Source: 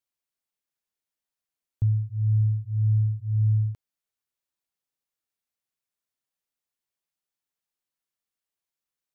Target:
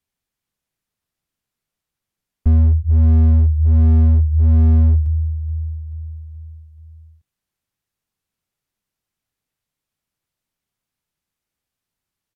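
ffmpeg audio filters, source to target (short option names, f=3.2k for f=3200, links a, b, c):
-filter_complex "[0:a]asetrate=32667,aresample=44100,aecho=1:1:430|860|1290|1720|2150:0.178|0.0942|0.05|0.0265|0.014,acrossover=split=140[a][b];[b]acompressor=threshold=-55dB:ratio=6[c];[a][c]amix=inputs=2:normalize=0,bass=f=250:g=11,treble=f=4k:g=-3,asplit=2[d][e];[e]alimiter=limit=-18dB:level=0:latency=1:release=79,volume=-2.5dB[f];[d][f]amix=inputs=2:normalize=0,asoftclip=type=hard:threshold=-11dB,volume=1.5dB"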